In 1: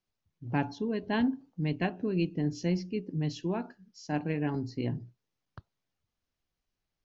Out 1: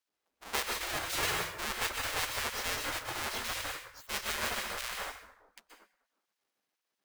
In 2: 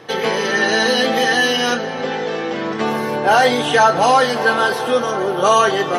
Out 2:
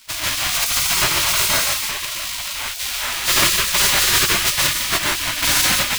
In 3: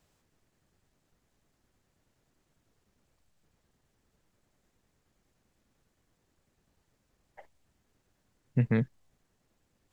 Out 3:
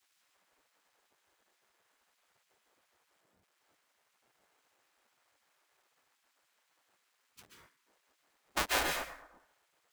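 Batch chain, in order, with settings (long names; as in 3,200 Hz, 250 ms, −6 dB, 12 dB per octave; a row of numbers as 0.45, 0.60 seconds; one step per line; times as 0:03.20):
each half-wave held at its own peak
dense smooth reverb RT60 0.86 s, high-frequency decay 0.55×, pre-delay 115 ms, DRR 0 dB
gate on every frequency bin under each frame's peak −20 dB weak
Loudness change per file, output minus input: −1.5, −0.5, −3.0 LU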